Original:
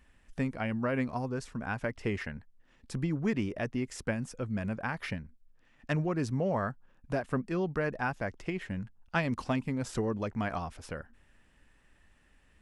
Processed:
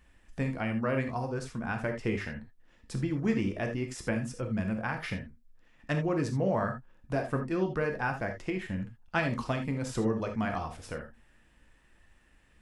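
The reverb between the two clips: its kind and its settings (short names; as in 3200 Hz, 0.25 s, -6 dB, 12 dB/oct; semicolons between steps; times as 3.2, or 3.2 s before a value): non-linear reverb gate 0.1 s flat, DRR 4 dB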